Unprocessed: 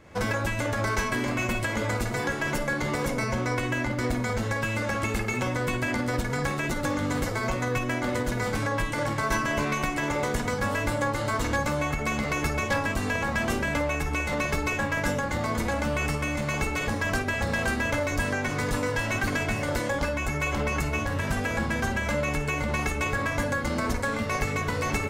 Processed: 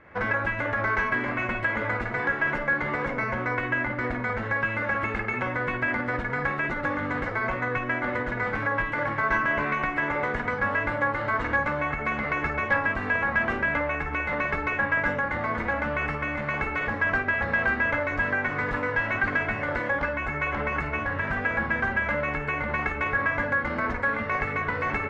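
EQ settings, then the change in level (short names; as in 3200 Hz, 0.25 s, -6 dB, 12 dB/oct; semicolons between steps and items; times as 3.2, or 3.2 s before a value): synth low-pass 1800 Hz, resonance Q 2; low shelf 380 Hz -5.5 dB; 0.0 dB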